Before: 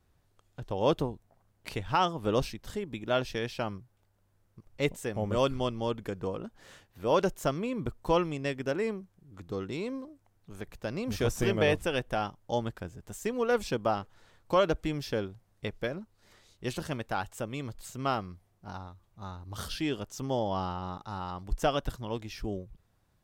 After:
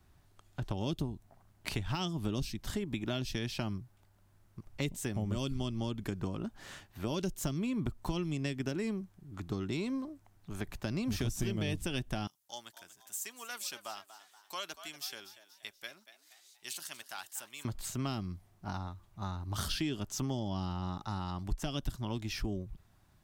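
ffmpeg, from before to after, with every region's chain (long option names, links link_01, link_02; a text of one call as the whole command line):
ffmpeg -i in.wav -filter_complex "[0:a]asettb=1/sr,asplit=3[link_01][link_02][link_03];[link_01]atrim=end=12.274[link_04];[link_02]atrim=start=12.27:end=17.65,asetpts=PTS-STARTPTS,afade=type=in:duration=0.004:curve=qsin,afade=type=out:start_time=5.376:duration=0.004:curve=qsin,aderivative,asplit=5[link_05][link_06][link_07][link_08][link_09];[link_06]adelay=238,afreqshift=90,volume=-14dB[link_10];[link_07]adelay=476,afreqshift=180,volume=-21.1dB[link_11];[link_08]adelay=714,afreqshift=270,volume=-28.3dB[link_12];[link_09]adelay=952,afreqshift=360,volume=-35.4dB[link_13];[link_05][link_10][link_11][link_12][link_13]amix=inputs=5:normalize=0,atrim=end_sample=237258[link_14];[link_03]atrim=start=17.646[link_15];[link_04][link_14]acrossfade=duration=0.004:curve1=hsin:curve2=qsin[link_16];[link_16][link_15]acrossfade=duration=0.004:curve1=qsin:curve2=hsin,acrossover=split=350|3000[link_17][link_18][link_19];[link_18]acompressor=threshold=-42dB:ratio=6[link_20];[link_17][link_20][link_19]amix=inputs=3:normalize=0,equalizer=frequency=490:width_type=o:width=0.22:gain=-14,acompressor=threshold=-36dB:ratio=4,volume=5dB" out.wav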